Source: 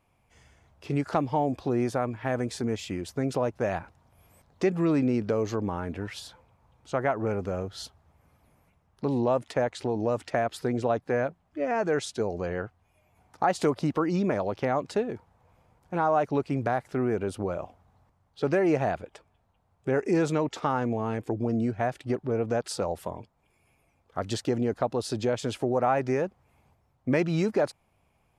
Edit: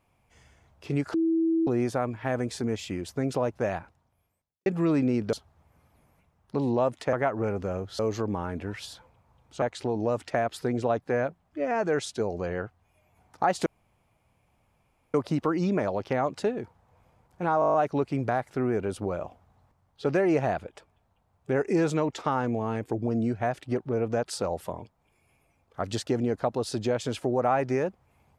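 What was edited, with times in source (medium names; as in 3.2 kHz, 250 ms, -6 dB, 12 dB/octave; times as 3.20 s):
1.14–1.67 s: bleep 327 Hz -21 dBFS
3.66–4.66 s: fade out quadratic
5.33–6.96 s: swap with 7.82–9.62 s
13.66 s: insert room tone 1.48 s
16.12 s: stutter 0.02 s, 8 plays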